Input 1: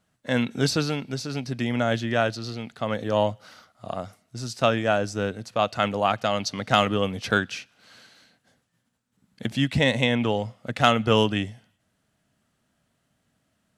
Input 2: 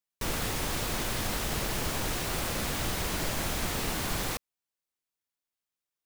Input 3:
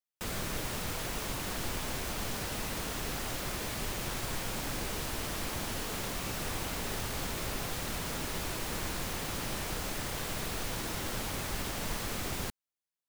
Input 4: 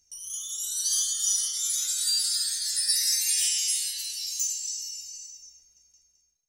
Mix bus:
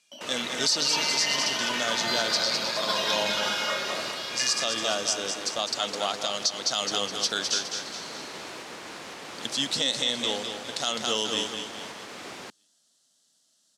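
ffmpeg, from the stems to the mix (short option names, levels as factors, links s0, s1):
-filter_complex "[0:a]aexciter=amount=13.7:drive=5.8:freq=3600,volume=0.422,asplit=3[s0][s1][s2];[s1]volume=0.447[s3];[1:a]volume=53.1,asoftclip=hard,volume=0.0188,volume=1[s4];[2:a]alimiter=level_in=1.33:limit=0.0631:level=0:latency=1:release=446,volume=0.75,volume=1.19[s5];[3:a]acrusher=samples=5:mix=1:aa=0.000001,volume=0.708,asplit=2[s6][s7];[s7]volume=0.596[s8];[s2]apad=whole_len=266959[s9];[s4][s9]sidechaingate=range=0.0224:threshold=0.00794:ratio=16:detection=peak[s10];[s3][s8]amix=inputs=2:normalize=0,aecho=0:1:207|414|621|828|1035|1242:1|0.42|0.176|0.0741|0.0311|0.0131[s11];[s0][s10][s5][s6][s11]amix=inputs=5:normalize=0,highpass=290,lowpass=6000,alimiter=limit=0.224:level=0:latency=1:release=97"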